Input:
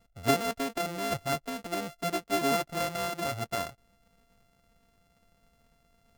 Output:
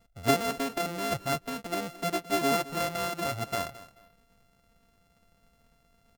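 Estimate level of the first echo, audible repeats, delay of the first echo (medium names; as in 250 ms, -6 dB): -17.0 dB, 2, 217 ms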